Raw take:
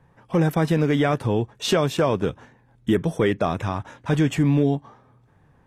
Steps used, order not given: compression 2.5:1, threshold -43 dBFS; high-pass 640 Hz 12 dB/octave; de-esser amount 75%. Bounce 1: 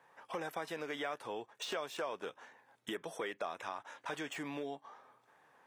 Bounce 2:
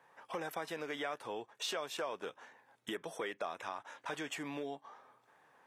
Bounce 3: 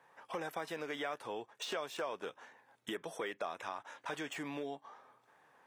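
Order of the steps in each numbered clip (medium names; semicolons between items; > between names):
high-pass > de-esser > compression; high-pass > compression > de-esser; de-esser > high-pass > compression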